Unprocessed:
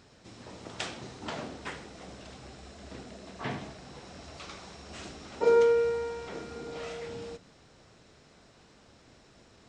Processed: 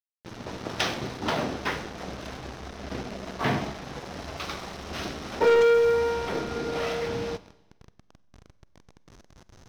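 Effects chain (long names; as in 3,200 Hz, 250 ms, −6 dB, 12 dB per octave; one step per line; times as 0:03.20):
hold until the input has moved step −45.5 dBFS
Chebyshev low-pass filter 6,300 Hz, order 8
leveller curve on the samples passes 3
four-comb reverb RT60 1 s, combs from 31 ms, DRR 16.5 dB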